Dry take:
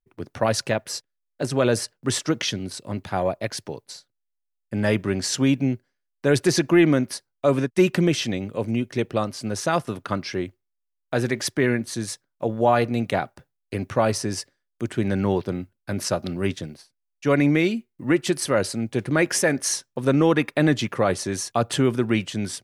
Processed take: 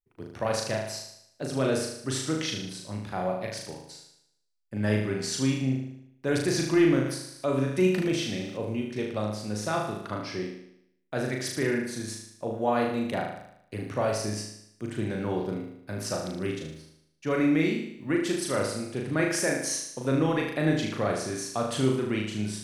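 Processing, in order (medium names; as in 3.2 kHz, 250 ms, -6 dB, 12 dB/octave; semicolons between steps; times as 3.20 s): flutter echo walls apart 6.5 m, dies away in 0.74 s; 7.06–8.57 s: tape noise reduction on one side only encoder only; trim -8.5 dB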